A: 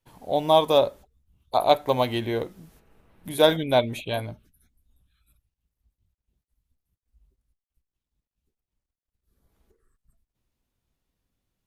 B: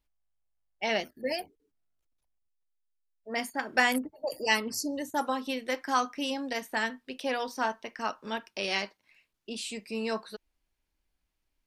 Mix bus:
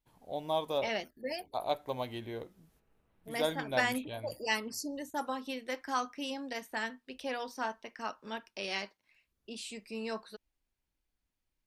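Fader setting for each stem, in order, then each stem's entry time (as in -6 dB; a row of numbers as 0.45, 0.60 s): -14.0, -6.0 dB; 0.00, 0.00 s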